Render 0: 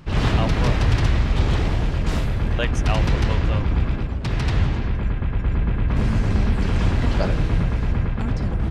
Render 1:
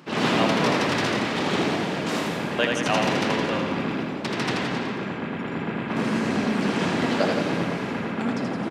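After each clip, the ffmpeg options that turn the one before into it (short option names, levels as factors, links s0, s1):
-af "highpass=f=200:w=0.5412,highpass=f=200:w=1.3066,aecho=1:1:80|168|264.8|371.3|488.4:0.631|0.398|0.251|0.158|0.1,volume=1.26"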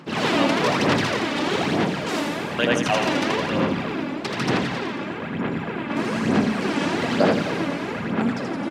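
-af "aphaser=in_gain=1:out_gain=1:delay=3.5:decay=0.48:speed=1.1:type=sinusoidal"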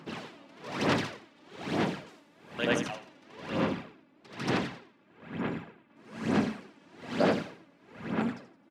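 -af "aeval=exprs='val(0)*pow(10,-29*(0.5-0.5*cos(2*PI*1.1*n/s))/20)':c=same,volume=0.473"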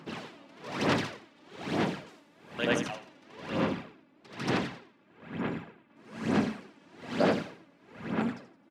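-af anull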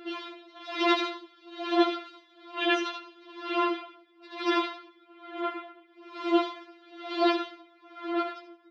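-af "highpass=280,equalizer=f=310:t=q:w=4:g=3,equalizer=f=560:t=q:w=4:g=-8,equalizer=f=800:t=q:w=4:g=6,equalizer=f=1300:t=q:w=4:g=5,equalizer=f=1800:t=q:w=4:g=-4,equalizer=f=3600:t=q:w=4:g=7,lowpass=f=4800:w=0.5412,lowpass=f=4800:w=1.3066,afftfilt=real='re*4*eq(mod(b,16),0)':imag='im*4*eq(mod(b,16),0)':win_size=2048:overlap=0.75,volume=2"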